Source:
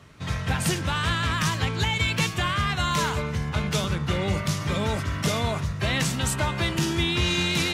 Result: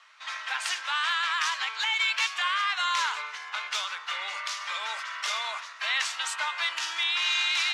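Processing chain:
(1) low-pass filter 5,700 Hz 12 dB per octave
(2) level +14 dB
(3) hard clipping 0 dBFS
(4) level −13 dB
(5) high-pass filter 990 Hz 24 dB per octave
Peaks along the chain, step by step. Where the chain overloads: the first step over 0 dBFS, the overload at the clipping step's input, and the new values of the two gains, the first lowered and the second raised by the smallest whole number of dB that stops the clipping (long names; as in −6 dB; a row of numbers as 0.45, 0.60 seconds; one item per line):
−11.0, +3.0, 0.0, −13.0, −13.0 dBFS
step 2, 3.0 dB
step 2 +11 dB, step 4 −10 dB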